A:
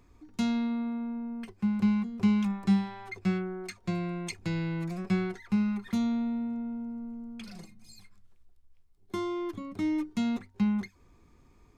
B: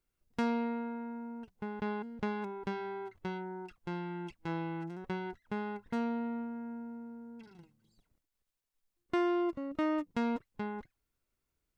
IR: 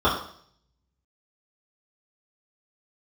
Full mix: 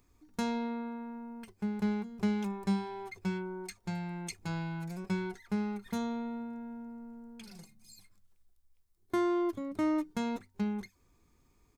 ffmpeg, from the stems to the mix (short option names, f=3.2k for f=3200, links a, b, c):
-filter_complex "[0:a]crystalizer=i=2:c=0,volume=-8.5dB[a];[1:a]equalizer=f=2.8k:w=3.1:g=-9,adelay=0.4,volume=-1.5dB[b];[a][b]amix=inputs=2:normalize=0"